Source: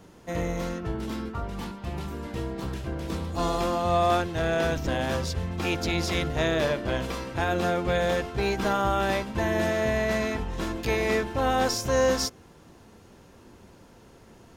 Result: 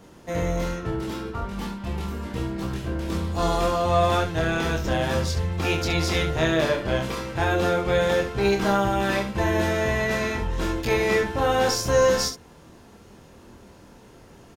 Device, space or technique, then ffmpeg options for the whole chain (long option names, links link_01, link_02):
slapback doubling: -filter_complex "[0:a]asplit=3[link_01][link_02][link_03];[link_02]adelay=25,volume=-4dB[link_04];[link_03]adelay=70,volume=-9dB[link_05];[link_01][link_04][link_05]amix=inputs=3:normalize=0,volume=1.5dB"